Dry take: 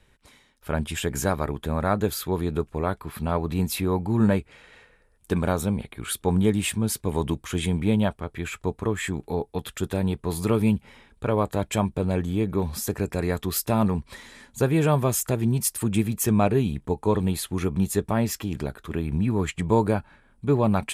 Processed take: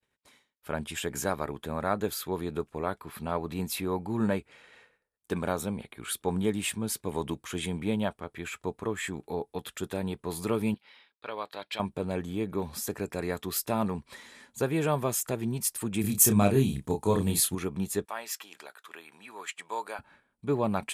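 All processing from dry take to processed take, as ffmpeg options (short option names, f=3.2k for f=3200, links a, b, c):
-filter_complex "[0:a]asettb=1/sr,asplit=3[a][b][c];[a]atrim=end=10.744[d];[b]atrim=start=10.74:end=11.8,asetpts=PTS-STARTPTS,afade=t=in:d=0.004:c=qsin,afade=t=out:st=1.056:d=0.004:c=qsin,highpass=f=1.4k:p=1,highshelf=f=5.6k:t=q:w=3:g=-8.5[e];[c]atrim=start=11.796[f];[d][e]acrossfade=d=0.004:c1=hsin:c2=qsin[g];[g][f]acrossfade=d=0.004:c1=qsin:c2=hsin,asettb=1/sr,asplit=3[h][i][j];[h]atrim=end=16.014[k];[i]atrim=start=16.01:end=17.55,asetpts=PTS-STARTPTS,afade=t=in:d=0.004:c=qsin,afade=t=out:st=1.536:d=0.004:c=qsin,bass=f=250:g=7,treble=f=4k:g=11,asplit=2[l][m];[m]adelay=30,volume=-5dB[n];[l][n]amix=inputs=2:normalize=0,atrim=end_sample=67914[o];[j]atrim=start=17.546[p];[k][o]acrossfade=d=0.004:c1=hsin:c2=qsin[q];[q][p]acrossfade=d=0.004:c1=qsin:c2=hsin,asettb=1/sr,asplit=3[r][s][t];[r]atrim=end=18.054[u];[s]atrim=start=18.05:end=19.99,asetpts=PTS-STARTPTS,afade=t=in:d=0.004:c=qsin,afade=t=out:st=1.936:d=0.004:c=qsin,highpass=940,bandreject=f=2.1k:w=29[v];[t]atrim=start=19.986[w];[u][v]acrossfade=d=0.004:c1=hsin:c2=qsin[x];[x][w]acrossfade=d=0.004:c1=qsin:c2=hsin,agate=range=-33dB:threshold=-51dB:ratio=3:detection=peak,highpass=f=240:p=1,volume=-4dB"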